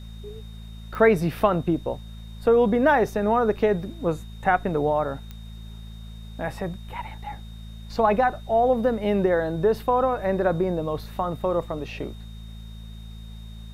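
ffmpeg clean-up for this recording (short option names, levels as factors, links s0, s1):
-af "adeclick=t=4,bandreject=f=54.9:t=h:w=4,bandreject=f=109.8:t=h:w=4,bandreject=f=164.7:t=h:w=4,bandreject=f=219.6:t=h:w=4,bandreject=f=3700:w=30,agate=range=0.0891:threshold=0.0282"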